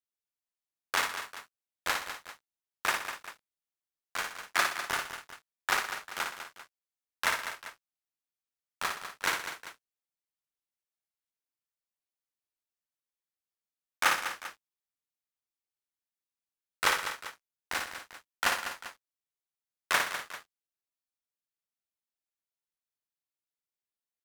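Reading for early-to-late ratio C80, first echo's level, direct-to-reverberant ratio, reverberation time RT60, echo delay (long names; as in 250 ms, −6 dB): no reverb audible, −5.0 dB, no reverb audible, no reverb audible, 57 ms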